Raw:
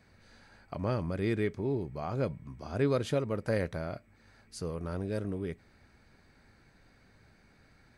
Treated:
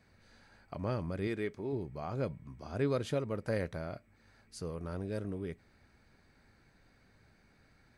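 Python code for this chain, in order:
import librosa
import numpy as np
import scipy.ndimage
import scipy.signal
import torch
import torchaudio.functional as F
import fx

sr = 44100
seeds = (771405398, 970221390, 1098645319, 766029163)

y = fx.peak_eq(x, sr, hz=78.0, db=-8.0, octaves=2.6, at=(1.27, 1.73))
y = y * librosa.db_to_amplitude(-3.5)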